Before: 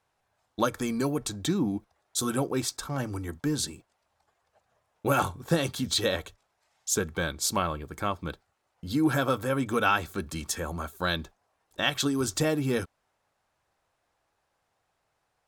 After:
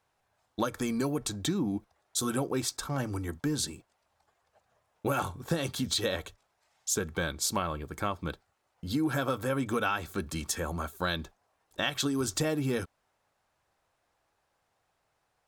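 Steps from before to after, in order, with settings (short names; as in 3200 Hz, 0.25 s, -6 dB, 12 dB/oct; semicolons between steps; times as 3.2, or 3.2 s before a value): compressor 4:1, threshold -26 dBFS, peak gain reduction 7 dB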